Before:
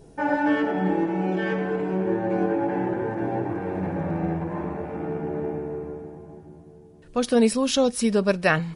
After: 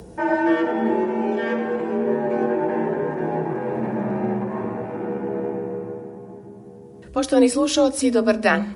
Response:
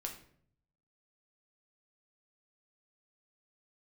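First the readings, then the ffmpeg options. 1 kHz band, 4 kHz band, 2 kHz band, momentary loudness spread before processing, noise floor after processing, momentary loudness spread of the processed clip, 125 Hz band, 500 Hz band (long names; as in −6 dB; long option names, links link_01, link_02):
+2.5 dB, +1.5 dB, +2.0 dB, 10 LU, −42 dBFS, 13 LU, −3.0 dB, +3.5 dB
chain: -filter_complex "[0:a]acompressor=mode=upward:threshold=-38dB:ratio=2.5,afreqshift=38,asplit=2[link_01][link_02];[link_02]equalizer=frequency=3100:width=1.3:gain=-11.5[link_03];[1:a]atrim=start_sample=2205[link_04];[link_03][link_04]afir=irnorm=-1:irlink=0,volume=-4.5dB[link_05];[link_01][link_05]amix=inputs=2:normalize=0"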